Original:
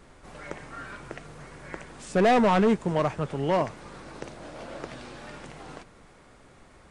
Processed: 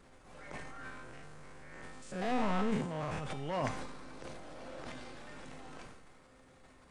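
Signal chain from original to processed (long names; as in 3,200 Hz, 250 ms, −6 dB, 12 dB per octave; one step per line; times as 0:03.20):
0:00.84–0:03.22: spectrum averaged block by block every 100 ms
dynamic equaliser 370 Hz, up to −5 dB, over −36 dBFS, Q 1
transient designer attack −6 dB, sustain +11 dB
tuned comb filter 260 Hz, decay 0.81 s, mix 80%
level +4.5 dB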